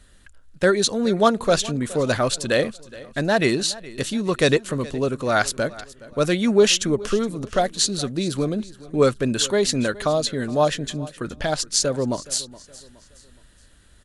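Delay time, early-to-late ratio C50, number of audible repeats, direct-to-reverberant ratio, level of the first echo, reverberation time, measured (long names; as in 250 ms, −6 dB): 419 ms, no reverb audible, 2, no reverb audible, −19.5 dB, no reverb audible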